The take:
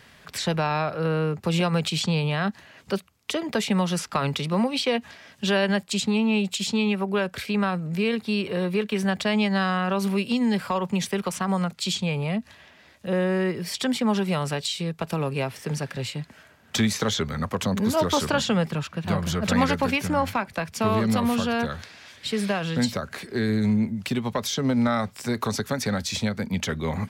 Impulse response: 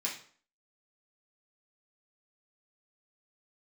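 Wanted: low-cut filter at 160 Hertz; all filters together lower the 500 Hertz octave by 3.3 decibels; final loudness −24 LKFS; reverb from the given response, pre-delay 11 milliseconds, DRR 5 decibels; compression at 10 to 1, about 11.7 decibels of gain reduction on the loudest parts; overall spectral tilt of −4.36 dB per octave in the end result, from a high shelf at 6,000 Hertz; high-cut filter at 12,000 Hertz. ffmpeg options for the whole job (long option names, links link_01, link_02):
-filter_complex "[0:a]highpass=160,lowpass=12000,equalizer=frequency=500:width_type=o:gain=-4,highshelf=frequency=6000:gain=-4.5,acompressor=threshold=-31dB:ratio=10,asplit=2[link_01][link_02];[1:a]atrim=start_sample=2205,adelay=11[link_03];[link_02][link_03]afir=irnorm=-1:irlink=0,volume=-8.5dB[link_04];[link_01][link_04]amix=inputs=2:normalize=0,volume=10dB"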